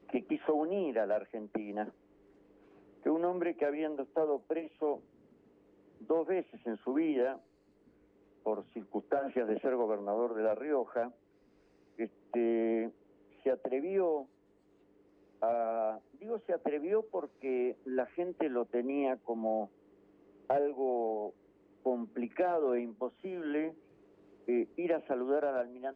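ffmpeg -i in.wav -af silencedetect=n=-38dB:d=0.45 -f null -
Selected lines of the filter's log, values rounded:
silence_start: 1.89
silence_end: 3.06 | silence_duration: 1.17
silence_start: 4.96
silence_end: 6.10 | silence_duration: 1.14
silence_start: 7.35
silence_end: 8.46 | silence_duration: 1.11
silence_start: 11.07
silence_end: 11.99 | silence_duration: 0.92
silence_start: 12.88
silence_end: 13.46 | silence_duration: 0.58
silence_start: 14.22
silence_end: 15.42 | silence_duration: 1.21
silence_start: 19.65
silence_end: 20.50 | silence_duration: 0.85
silence_start: 21.29
silence_end: 21.86 | silence_duration: 0.56
silence_start: 23.69
silence_end: 24.48 | silence_duration: 0.79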